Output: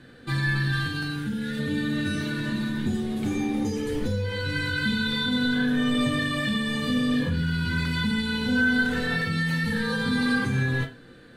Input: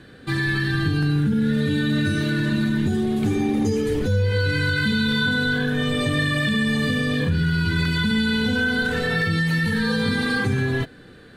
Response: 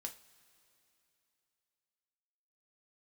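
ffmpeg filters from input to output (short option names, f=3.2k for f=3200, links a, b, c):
-filter_complex "[0:a]asettb=1/sr,asplit=3[a][b][c];[a]atrim=end=0.724[d];[b]atrim=start=0.72:end=1.59,asetpts=PTS-STARTPTS,afade=t=in:d=0.004:c=qsin,afade=t=out:st=0.866:d=0.004:c=qsin,tiltshelf=f=1.3k:g=-4.5[e];[c]atrim=start=1.586[f];[d][e]acrossfade=d=0.004:c1=hsin:c2=qsin[g];[g][f]acrossfade=d=0.004:c1=qsin:c2=hsin[h];[1:a]atrim=start_sample=2205,atrim=end_sample=6174[i];[h][i]afir=irnorm=-1:irlink=0"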